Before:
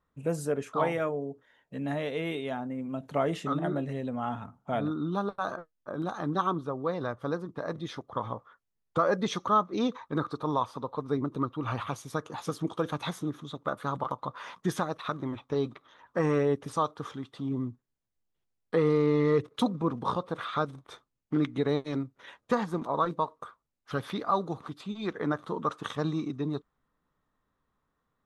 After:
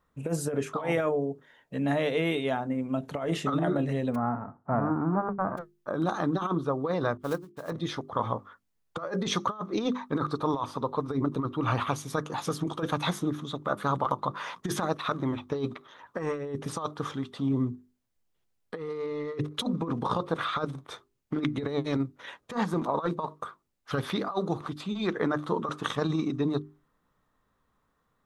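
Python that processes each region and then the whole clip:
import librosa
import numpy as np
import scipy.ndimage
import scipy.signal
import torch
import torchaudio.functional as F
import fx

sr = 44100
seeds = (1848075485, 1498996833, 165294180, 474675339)

y = fx.envelope_flatten(x, sr, power=0.3, at=(4.14, 5.57), fade=0.02)
y = fx.steep_lowpass(y, sr, hz=1300.0, slope=36, at=(4.14, 5.57), fade=0.02)
y = fx.chain(y, sr, fx.block_float(bits=5),
    fx.upward_expand(threshold_db=-45.0, expansion=2.5), at=(7.17, 7.72))
y = fx.hum_notches(y, sr, base_hz=50, count=8)
y = fx.over_compress(y, sr, threshold_db=-30.0, ratio=-0.5)
y = F.gain(torch.from_numpy(y), 3.5).numpy()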